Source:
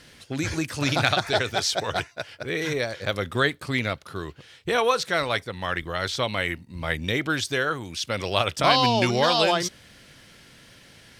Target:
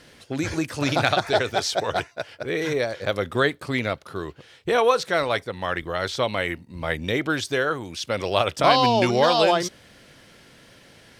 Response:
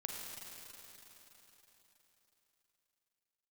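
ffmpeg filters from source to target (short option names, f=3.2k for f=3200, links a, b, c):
-af "equalizer=f=530:t=o:w=2.5:g=6,volume=-2dB"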